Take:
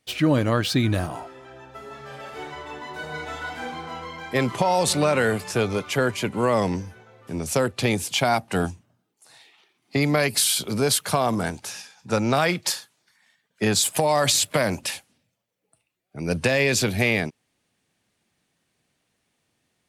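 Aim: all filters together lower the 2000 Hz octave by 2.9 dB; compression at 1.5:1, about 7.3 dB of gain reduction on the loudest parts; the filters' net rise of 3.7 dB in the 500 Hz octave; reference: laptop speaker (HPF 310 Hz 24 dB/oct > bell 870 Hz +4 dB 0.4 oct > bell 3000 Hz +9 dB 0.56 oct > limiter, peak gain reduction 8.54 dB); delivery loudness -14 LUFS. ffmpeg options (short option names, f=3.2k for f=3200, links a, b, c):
-af "equalizer=f=500:t=o:g=4.5,equalizer=f=2k:t=o:g=-7.5,acompressor=threshold=-35dB:ratio=1.5,highpass=f=310:w=0.5412,highpass=f=310:w=1.3066,equalizer=f=870:t=o:w=0.4:g=4,equalizer=f=3k:t=o:w=0.56:g=9,volume=16.5dB,alimiter=limit=-2.5dB:level=0:latency=1"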